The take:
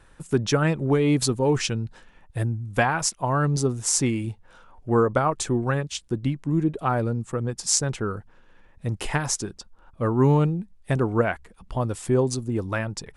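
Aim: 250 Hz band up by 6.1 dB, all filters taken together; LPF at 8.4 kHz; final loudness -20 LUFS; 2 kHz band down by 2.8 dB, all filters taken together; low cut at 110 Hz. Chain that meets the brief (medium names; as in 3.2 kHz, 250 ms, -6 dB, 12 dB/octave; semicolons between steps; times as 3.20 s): high-pass 110 Hz; low-pass 8.4 kHz; peaking EQ 250 Hz +8 dB; peaking EQ 2 kHz -4 dB; trim +2 dB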